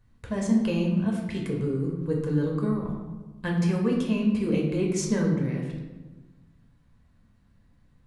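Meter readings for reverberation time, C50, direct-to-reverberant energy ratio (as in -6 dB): 1.2 s, 3.5 dB, -1.5 dB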